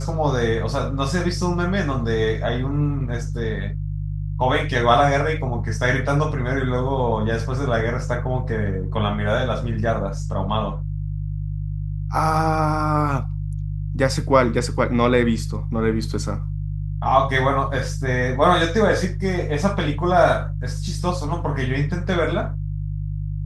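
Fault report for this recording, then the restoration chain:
mains hum 50 Hz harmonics 3 −26 dBFS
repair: hum removal 50 Hz, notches 3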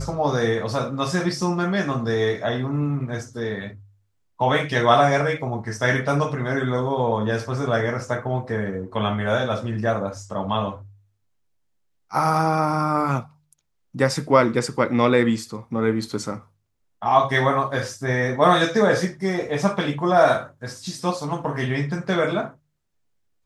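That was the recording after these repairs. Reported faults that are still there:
none of them is left

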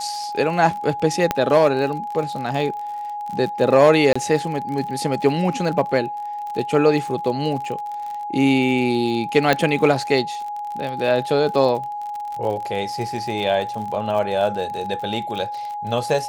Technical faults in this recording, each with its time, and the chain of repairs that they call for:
surface crackle 47 per second −28 dBFS
whistle 830 Hz −26 dBFS
0:01.31: click −4 dBFS
0:04.13–0:04.16: drop-out 25 ms
0:09.53: click −4 dBFS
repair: click removal
notch filter 830 Hz, Q 30
repair the gap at 0:04.13, 25 ms

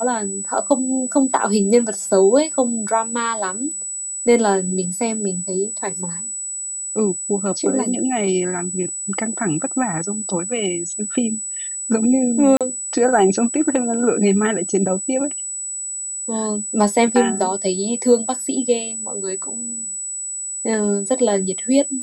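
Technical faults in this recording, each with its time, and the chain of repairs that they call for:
whistle 7,900 Hz −25 dBFS
0:12.57–0:12.61: drop-out 37 ms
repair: notch filter 7,900 Hz, Q 30
repair the gap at 0:12.57, 37 ms

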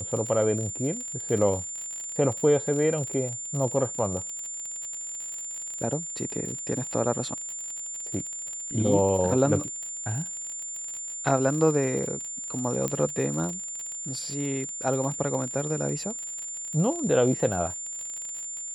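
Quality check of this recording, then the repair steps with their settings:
surface crackle 47 per second −32 dBFS
whistle 7,200 Hz −33 dBFS
0:12.88: click −14 dBFS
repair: click removal
notch filter 7,200 Hz, Q 30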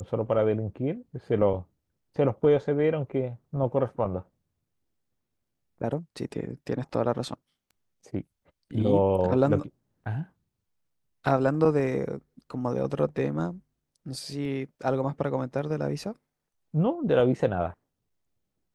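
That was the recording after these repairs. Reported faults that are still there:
none of them is left

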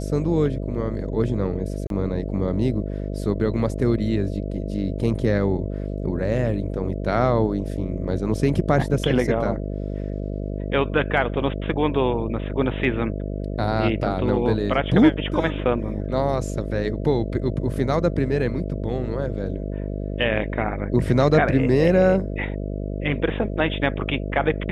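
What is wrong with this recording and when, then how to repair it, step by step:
mains buzz 50 Hz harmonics 13 −28 dBFS
0:01.87–0:01.90: drop-out 32 ms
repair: hum removal 50 Hz, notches 13
repair the gap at 0:01.87, 32 ms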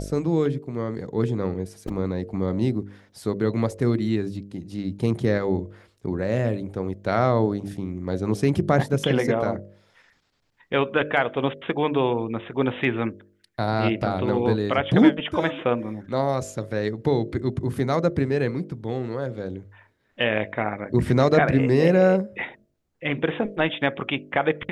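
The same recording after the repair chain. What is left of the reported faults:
none of them is left

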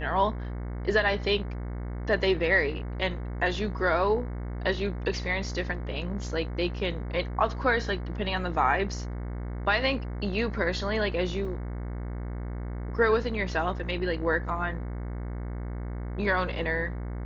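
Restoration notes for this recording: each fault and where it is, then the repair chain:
mains buzz 60 Hz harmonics 37 −34 dBFS
0:11.45: drop-out 2.2 ms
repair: hum removal 60 Hz, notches 37
repair the gap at 0:11.45, 2.2 ms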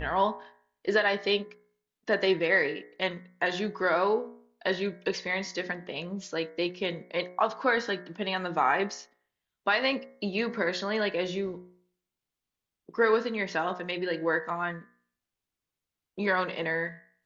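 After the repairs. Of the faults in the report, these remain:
none of them is left

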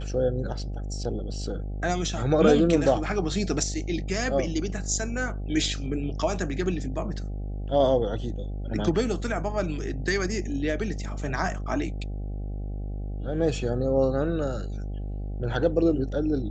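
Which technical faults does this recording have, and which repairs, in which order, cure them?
mains buzz 50 Hz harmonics 16 −32 dBFS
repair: hum removal 50 Hz, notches 16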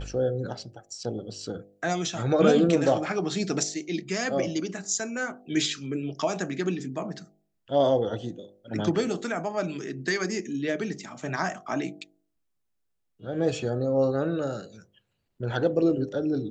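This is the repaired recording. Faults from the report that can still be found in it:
none of them is left

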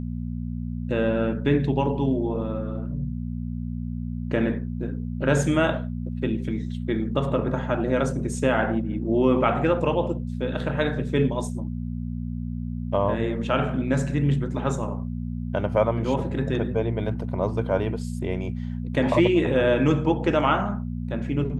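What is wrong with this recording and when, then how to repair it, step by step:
mains hum 60 Hz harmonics 4 −30 dBFS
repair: hum removal 60 Hz, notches 4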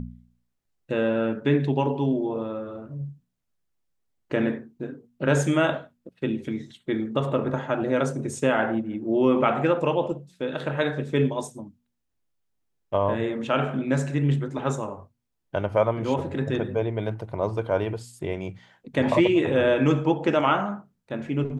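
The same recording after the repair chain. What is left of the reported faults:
none of them is left

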